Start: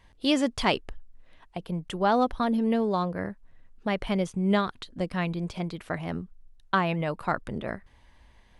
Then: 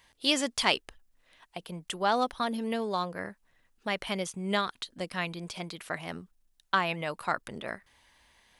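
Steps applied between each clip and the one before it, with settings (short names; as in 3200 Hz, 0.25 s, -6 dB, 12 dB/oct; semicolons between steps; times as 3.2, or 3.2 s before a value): tilt +3 dB/oct; gain -2 dB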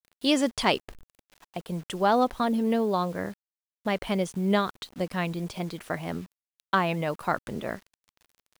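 tilt shelf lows +5.5 dB; bit-crush 9-bit; gain +3 dB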